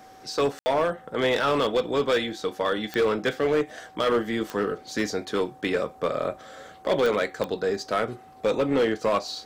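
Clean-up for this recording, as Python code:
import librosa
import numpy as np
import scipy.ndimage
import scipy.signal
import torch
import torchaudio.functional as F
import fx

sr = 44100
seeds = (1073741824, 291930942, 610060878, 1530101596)

y = fx.fix_declip(x, sr, threshold_db=-17.0)
y = fx.fix_declick_ar(y, sr, threshold=10.0)
y = fx.notch(y, sr, hz=760.0, q=30.0)
y = fx.fix_ambience(y, sr, seeds[0], print_start_s=6.35, print_end_s=6.85, start_s=0.59, end_s=0.66)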